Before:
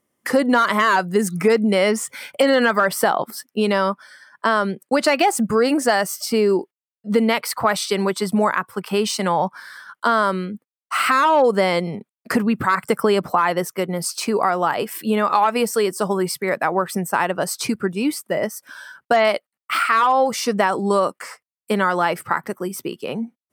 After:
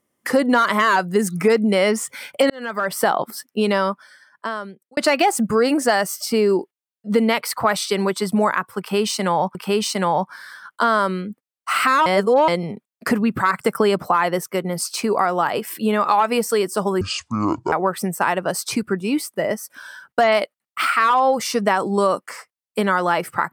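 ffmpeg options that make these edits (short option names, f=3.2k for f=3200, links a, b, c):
-filter_complex "[0:a]asplit=8[a][b][c][d][e][f][g][h];[a]atrim=end=2.5,asetpts=PTS-STARTPTS,afade=t=out:st=2.496:d=0.004:c=hsin[i];[b]atrim=start=2.5:end=4.97,asetpts=PTS-STARTPTS,afade=t=in:d=0.58,afade=t=out:st=1.24:d=1.23[j];[c]atrim=start=4.97:end=9.552,asetpts=PTS-STARTPTS,afade=t=in:d=0.004:c=hsin[k];[d]atrim=start=8.788:end=11.302[l];[e]atrim=start=11.298:end=11.722,asetpts=PTS-STARTPTS,areverse[m];[f]atrim=start=11.718:end=16.254[n];[g]atrim=start=16.25:end=16.65,asetpts=PTS-STARTPTS,asetrate=24696,aresample=44100[o];[h]atrim=start=16.646[p];[i][j][k]concat=n=3:v=0:a=1[q];[q][l]acrossfade=d=0.004:c1=hsin:c2=hsin[r];[r][m]acrossfade=d=0.004:c1=hsin:c2=hsin[s];[s][n]acrossfade=d=0.004:c1=hsin:c2=hsin[t];[t][o]acrossfade=d=0.004:c1=hsin:c2=hsin[u];[u][p]acrossfade=d=0.004:c1=hsin:c2=hsin"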